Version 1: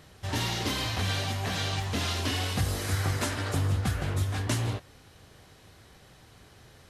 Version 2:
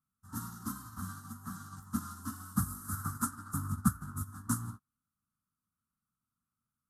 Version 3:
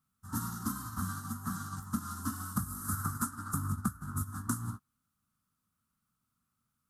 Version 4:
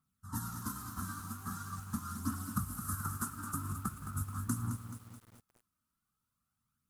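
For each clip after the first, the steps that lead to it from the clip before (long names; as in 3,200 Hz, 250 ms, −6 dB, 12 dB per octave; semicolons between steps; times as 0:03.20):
drawn EQ curve 100 Hz 0 dB, 230 Hz +12 dB, 530 Hz −28 dB, 1,300 Hz +15 dB, 2,300 Hz −30 dB, 8,300 Hz +9 dB, 12,000 Hz +14 dB; expander for the loud parts 2.5 to 1, over −43 dBFS; level −2.5 dB
downward compressor 6 to 1, threshold −37 dBFS, peak gain reduction 15 dB; level +7 dB
phase shifter 0.43 Hz, delay 3.4 ms, feedback 43%; feedback echo at a low word length 215 ms, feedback 55%, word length 8 bits, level −9 dB; level −4 dB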